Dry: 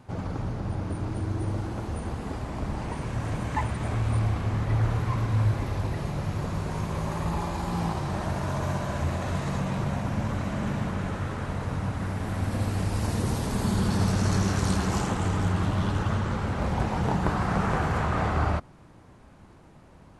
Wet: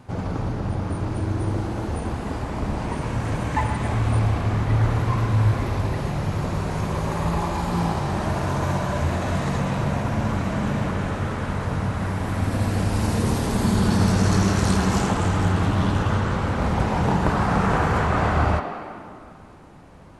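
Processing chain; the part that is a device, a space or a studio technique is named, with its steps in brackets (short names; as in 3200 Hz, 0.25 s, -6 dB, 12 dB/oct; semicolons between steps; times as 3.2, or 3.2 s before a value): filtered reverb send (on a send: HPF 220 Hz 24 dB/oct + LPF 4200 Hz + reverb RT60 2.4 s, pre-delay 25 ms, DRR 4 dB); on the sum: gain +4.5 dB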